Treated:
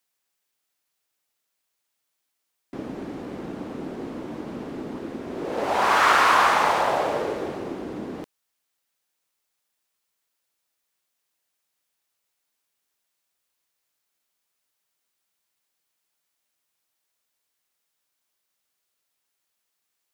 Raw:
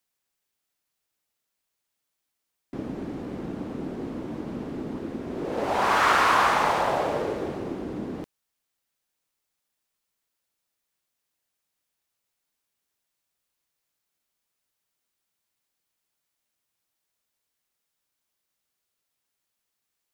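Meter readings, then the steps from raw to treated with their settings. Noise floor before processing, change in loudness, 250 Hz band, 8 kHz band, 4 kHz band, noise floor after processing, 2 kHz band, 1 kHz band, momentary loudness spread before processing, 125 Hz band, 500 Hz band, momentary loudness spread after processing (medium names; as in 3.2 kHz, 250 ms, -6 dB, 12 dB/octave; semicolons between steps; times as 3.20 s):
-82 dBFS, +4.0 dB, -0.5 dB, +3.0 dB, +3.0 dB, -79 dBFS, +3.0 dB, +2.5 dB, 15 LU, -3.0 dB, +1.5 dB, 18 LU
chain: bass shelf 250 Hz -8 dB; trim +3 dB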